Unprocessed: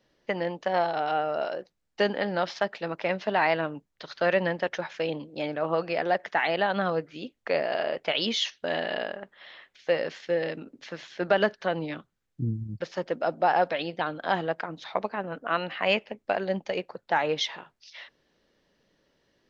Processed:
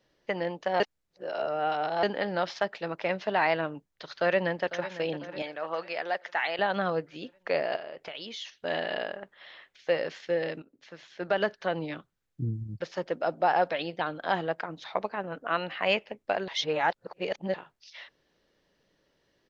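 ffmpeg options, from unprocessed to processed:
ffmpeg -i in.wav -filter_complex "[0:a]asplit=2[link_01][link_02];[link_02]afade=type=in:start_time=4.13:duration=0.01,afade=type=out:start_time=4.92:duration=0.01,aecho=0:1:500|1000|1500|2000|2500|3000:0.199526|0.109739|0.0603567|0.0331962|0.0182579|0.0100418[link_03];[link_01][link_03]amix=inputs=2:normalize=0,asettb=1/sr,asplit=3[link_04][link_05][link_06];[link_04]atrim=end=5.424[link_07];[link_05]atrim=start=5.42:end=6.59,asetpts=PTS-STARTPTS,afade=type=in:duration=0.004:curve=qsin,afade=type=out:start_time=1.166:duration=0.004:curve=qsin,highpass=frequency=890:poles=1[link_08];[link_06]atrim=start=6.586[link_09];[link_07][link_08]acrossfade=duration=0.004:curve1=hsin:curve2=qsin[link_10];[link_10][link_09]acrossfade=duration=0.004:curve1=qsin:curve2=hsin,asettb=1/sr,asplit=3[link_11][link_12][link_13];[link_11]atrim=end=7.764[link_14];[link_12]atrim=start=7.76:end=8.65,asetpts=PTS-STARTPTS,afade=type=in:duration=0.004:curve=qsin,afade=type=out:start_time=0.886:duration=0.004:curve=qsin,acompressor=threshold=-38dB:ratio=3:attack=3.2:release=140:knee=1:detection=peak[link_15];[link_13]atrim=start=8.646[link_16];[link_14][link_15]acrossfade=duration=0.004:curve1=hsin:curve2=qsin[link_17];[link_17][link_16]acrossfade=duration=0.004:curve1=qsin:curve2=hsin,asplit=6[link_18][link_19][link_20][link_21][link_22][link_23];[link_18]atrim=end=0.802[link_24];[link_19]atrim=start=0.798:end=2.032,asetpts=PTS-STARTPTS,areverse[link_25];[link_20]atrim=start=2.028:end=10.62,asetpts=PTS-STARTPTS,afade=type=out:start_time=8.588:duration=0.004:curve=hsin:silence=0.223872[link_26];[link_21]atrim=start=10.62:end=16.482,asetpts=PTS-STARTPTS,afade=type=in:duration=1.12:silence=0.223872[link_27];[link_22]atrim=start=16.478:end=17.542,asetpts=PTS-STARTPTS,areverse[link_28];[link_23]atrim=start=17.538[link_29];[link_24][link_25]acrossfade=duration=0.004:curve1=hsin:curve2=hsin[link_30];[link_26][link_27]concat=n=2:v=0:a=1[link_31];[link_30][link_31]acrossfade=duration=0.004:curve1=hsin:curve2=hsin[link_32];[link_32][link_28]acrossfade=duration=0.004:curve1=hsin:curve2=hsin[link_33];[link_33][link_29]acrossfade=duration=0.004:curve1=hsin:curve2=hsin,equalizer=frequency=230:width=4.1:gain=-4,volume=-1.5dB" out.wav

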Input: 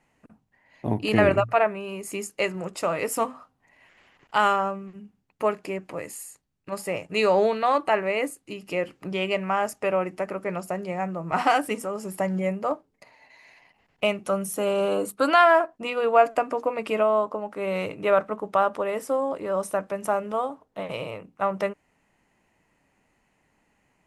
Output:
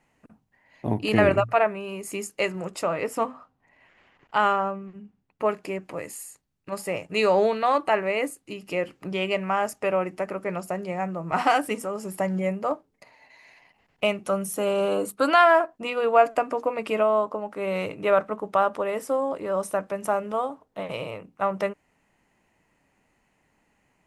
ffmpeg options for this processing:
ffmpeg -i in.wav -filter_complex "[0:a]asettb=1/sr,asplit=3[link_01][link_02][link_03];[link_01]atrim=end=2.834[link_04];[link_02]atrim=start=2.83:end=5.49,asetpts=PTS-STARTPTS,afade=type=in:duration=0.004:curve=qsin,afade=type=out:start_time=2.656:duration=0.004:curve=qsin,lowpass=frequency=2800:poles=1[link_05];[link_03]atrim=start=5.486[link_06];[link_04][link_05]acrossfade=duration=0.004:curve1=hsin:curve2=qsin[link_07];[link_07][link_06]acrossfade=duration=0.004:curve1=qsin:curve2=hsin" out.wav

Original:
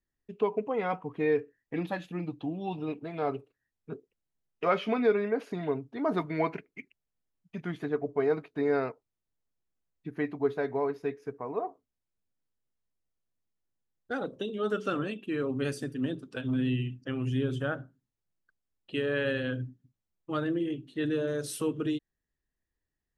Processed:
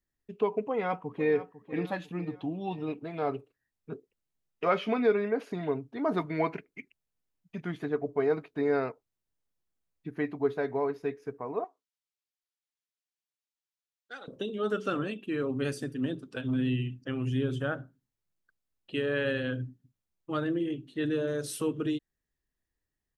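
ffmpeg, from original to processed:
ffmpeg -i in.wav -filter_complex "[0:a]asplit=2[link_01][link_02];[link_02]afade=type=in:start_time=0.61:duration=0.01,afade=type=out:start_time=1.35:duration=0.01,aecho=0:1:500|1000|1500|2000:0.199526|0.0897868|0.0404041|0.0181818[link_03];[link_01][link_03]amix=inputs=2:normalize=0,asettb=1/sr,asplit=3[link_04][link_05][link_06];[link_04]atrim=end=11.644[link_07];[link_05]atrim=start=11.64:end=14.28,asetpts=PTS-STARTPTS,afade=type=in:duration=0.004:curve=qsin,afade=type=out:start_time=2.636:duration=0.004:curve=qsin,bandpass=frequency=4200:width_type=q:width=0.69[link_08];[link_06]atrim=start=14.276[link_09];[link_07][link_08]acrossfade=duration=0.004:curve1=hsin:curve2=qsin[link_10];[link_10][link_09]acrossfade=duration=0.004:curve1=qsin:curve2=hsin" out.wav

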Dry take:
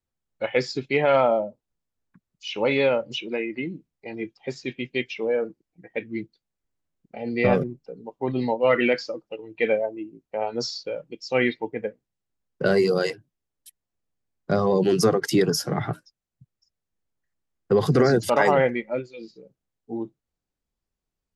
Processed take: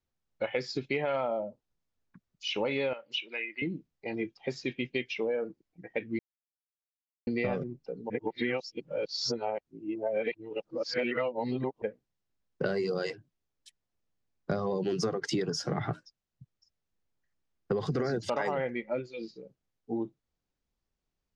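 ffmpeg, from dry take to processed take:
ffmpeg -i in.wav -filter_complex "[0:a]asettb=1/sr,asplit=3[link_01][link_02][link_03];[link_01]atrim=end=2.934[link_04];[link_02]atrim=start=2.93:end=3.62,asetpts=PTS-STARTPTS,afade=type=in:duration=0.004:curve=qsin,afade=type=out:start_time=0.686:duration=0.004:curve=qsin,bandpass=frequency=2600:width_type=q:width=1.1[link_05];[link_03]atrim=start=3.616[link_06];[link_04][link_05]acrossfade=duration=0.004:curve1=hsin:curve2=qsin[link_07];[link_07][link_06]acrossfade=duration=0.004:curve1=qsin:curve2=hsin,asplit=5[link_08][link_09][link_10][link_11][link_12];[link_08]atrim=end=6.19,asetpts=PTS-STARTPTS,afade=type=out:start_time=6.186:duration=0.004:curve=hsin[link_13];[link_09]atrim=start=6.19:end=7.27,asetpts=PTS-STARTPTS,volume=0[link_14];[link_10]atrim=start=7.27:end=8.102,asetpts=PTS-STARTPTS,afade=type=in:duration=0.004:curve=hsin[link_15];[link_11]atrim=start=8.098:end=11.822,asetpts=PTS-STARTPTS,areverse[link_16];[link_12]atrim=start=11.818[link_17];[link_13][link_14][link_15]concat=n=3:v=0:a=1[link_18];[link_18][link_16]acrossfade=duration=0.004:curve1=hsin:curve2=hsin[link_19];[link_19][link_17]acrossfade=duration=0.004:curve1=hsin:curve2=hsin,lowpass=frequency=6800:width=0.5412,lowpass=frequency=6800:width=1.3066,acompressor=threshold=-28dB:ratio=6" out.wav

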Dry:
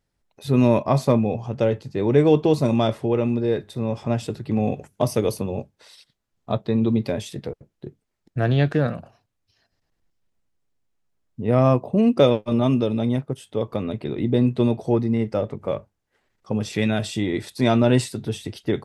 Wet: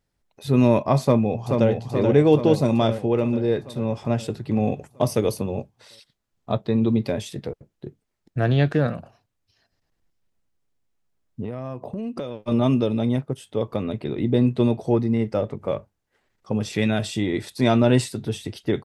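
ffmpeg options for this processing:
ffmpeg -i in.wav -filter_complex "[0:a]asplit=2[link_01][link_02];[link_02]afade=type=in:start_time=1.03:duration=0.01,afade=type=out:start_time=1.69:duration=0.01,aecho=0:1:430|860|1290|1720|2150|2580|3010|3440|3870|4300:0.595662|0.38718|0.251667|0.163584|0.106329|0.0691141|0.0449242|0.0292007|0.0189805|0.0123373[link_03];[link_01][link_03]amix=inputs=2:normalize=0,asettb=1/sr,asplit=3[link_04][link_05][link_06];[link_04]atrim=end=11.444[link_07];[link_05]atrim=start=11.44:end=12.47,asetpts=PTS-STARTPTS,afade=type=in:duration=0.004:curve=qsin,afade=type=out:start_time=1.026:duration=0.004:curve=qsin,acompressor=threshold=-26dB:ratio=16:attack=3.2:release=140:knee=1:detection=peak[link_08];[link_06]atrim=start=12.466[link_09];[link_07][link_08]acrossfade=duration=0.004:curve1=hsin:curve2=qsin[link_10];[link_10][link_09]acrossfade=duration=0.004:curve1=qsin:curve2=hsin" out.wav

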